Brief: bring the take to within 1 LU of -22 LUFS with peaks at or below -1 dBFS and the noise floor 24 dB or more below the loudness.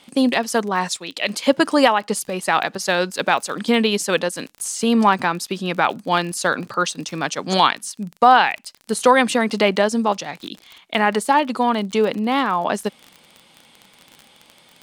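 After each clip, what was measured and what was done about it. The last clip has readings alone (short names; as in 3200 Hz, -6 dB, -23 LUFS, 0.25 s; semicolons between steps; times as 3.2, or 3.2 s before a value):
ticks 32/s; loudness -19.5 LUFS; peak -1.0 dBFS; loudness target -22.0 LUFS
-> de-click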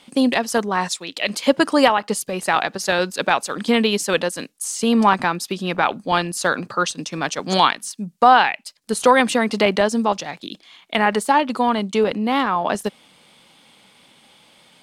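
ticks 0/s; loudness -19.5 LUFS; peak -1.0 dBFS; loudness target -22.0 LUFS
-> gain -2.5 dB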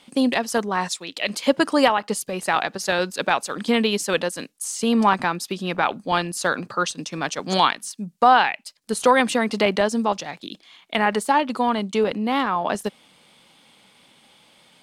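loudness -22.0 LUFS; peak -3.5 dBFS; noise floor -57 dBFS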